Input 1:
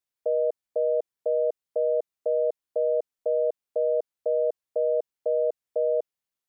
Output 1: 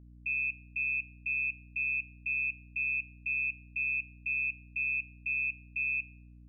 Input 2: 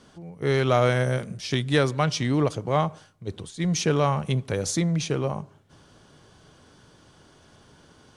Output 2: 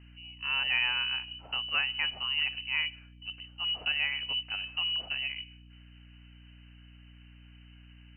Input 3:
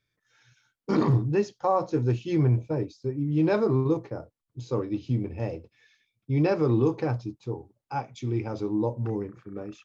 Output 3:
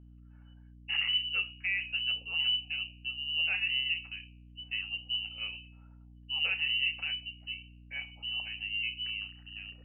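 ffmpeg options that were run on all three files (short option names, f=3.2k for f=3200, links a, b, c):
-af "bandreject=f=70.51:t=h:w=4,bandreject=f=141.02:t=h:w=4,bandreject=f=211.53:t=h:w=4,bandreject=f=282.04:t=h:w=4,bandreject=f=352.55:t=h:w=4,bandreject=f=423.06:t=h:w=4,bandreject=f=493.57:t=h:w=4,bandreject=f=564.08:t=h:w=4,bandreject=f=634.59:t=h:w=4,bandreject=f=705.1:t=h:w=4,bandreject=f=775.61:t=h:w=4,bandreject=f=846.12:t=h:w=4,lowpass=f=2.6k:t=q:w=0.5098,lowpass=f=2.6k:t=q:w=0.6013,lowpass=f=2.6k:t=q:w=0.9,lowpass=f=2.6k:t=q:w=2.563,afreqshift=-3100,aeval=exprs='val(0)+0.00631*(sin(2*PI*60*n/s)+sin(2*PI*2*60*n/s)/2+sin(2*PI*3*60*n/s)/3+sin(2*PI*4*60*n/s)/4+sin(2*PI*5*60*n/s)/5)':c=same,volume=-8dB"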